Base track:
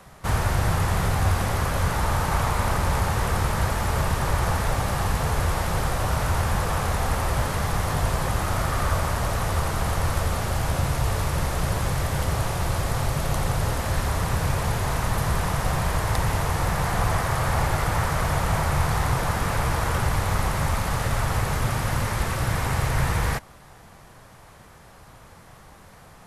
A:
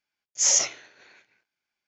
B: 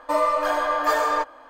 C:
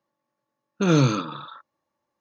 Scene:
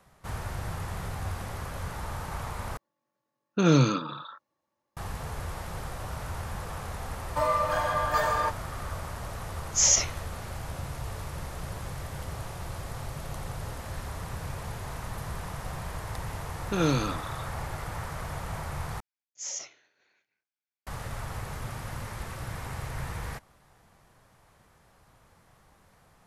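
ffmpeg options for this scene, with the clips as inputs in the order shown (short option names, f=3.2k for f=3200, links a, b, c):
-filter_complex "[3:a]asplit=2[a][b];[1:a]asplit=2[c][d];[0:a]volume=-12.5dB[e];[2:a]highpass=460[f];[b]lowshelf=f=230:g=-6[g];[e]asplit=3[h][i][j];[h]atrim=end=2.774[k];[a]atrim=end=2.2,asetpts=PTS-STARTPTS,volume=-2dB[l];[i]atrim=start=4.966:end=19.004[m];[d]atrim=end=1.87,asetpts=PTS-STARTPTS,volume=-16dB[n];[j]atrim=start=20.866[o];[f]atrim=end=1.49,asetpts=PTS-STARTPTS,volume=-4.5dB,afade=t=in:d=0.004:c=hsin,afade=t=out:st=1.486:d=0.004:c=hsin,adelay=7270[p];[c]atrim=end=1.87,asetpts=PTS-STARTPTS,volume=-1dB,afade=t=in:d=0.004:c=hsin,afade=t=out:st=1.866:d=0.004:c=hsin,adelay=9370[q];[g]atrim=end=2.2,asetpts=PTS-STARTPTS,volume=-4.5dB,afade=t=in:d=0.004:c=hsin,afade=t=out:st=2.196:d=0.004:c=hsin,adelay=15910[r];[k][l]acrossfade=d=0.004:c1=hsin:c2=hsin[s];[s][m]acrossfade=d=0.004:c1=hsin:c2=hsin[t];[t][n]acrossfade=d=0.004:c1=hsin:c2=hsin[u];[u][o]acrossfade=d=0.004:c1=hsin:c2=hsin[v];[v][p][q][r]amix=inputs=4:normalize=0"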